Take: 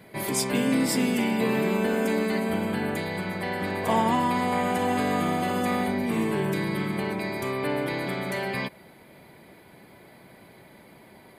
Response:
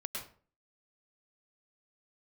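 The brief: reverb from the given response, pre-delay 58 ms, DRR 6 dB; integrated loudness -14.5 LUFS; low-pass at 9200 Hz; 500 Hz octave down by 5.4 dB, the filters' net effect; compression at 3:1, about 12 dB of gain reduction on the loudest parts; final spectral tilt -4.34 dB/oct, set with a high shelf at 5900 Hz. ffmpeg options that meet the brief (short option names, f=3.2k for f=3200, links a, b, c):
-filter_complex "[0:a]lowpass=9.2k,equalizer=f=500:t=o:g=-7,highshelf=f=5.9k:g=5.5,acompressor=threshold=-38dB:ratio=3,asplit=2[a][b];[1:a]atrim=start_sample=2205,adelay=58[c];[b][c]afir=irnorm=-1:irlink=0,volume=-7dB[d];[a][d]amix=inputs=2:normalize=0,volume=22.5dB"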